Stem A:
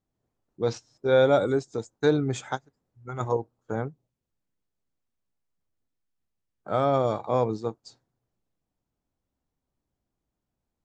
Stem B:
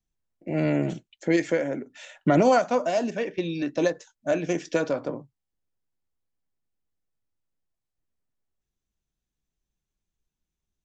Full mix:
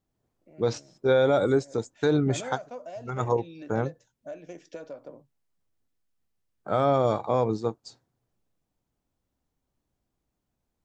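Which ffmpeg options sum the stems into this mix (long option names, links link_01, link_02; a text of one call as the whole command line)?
ffmpeg -i stem1.wav -i stem2.wav -filter_complex "[0:a]volume=2.5dB[link_01];[1:a]equalizer=frequency=580:width_type=o:width=0.77:gain=6.5,acompressor=threshold=-36dB:ratio=2,volume=-9.5dB,afade=type=in:start_time=1.53:duration=0.74:silence=0.251189[link_02];[link_01][link_02]amix=inputs=2:normalize=0,alimiter=limit=-12.5dB:level=0:latency=1:release=69" out.wav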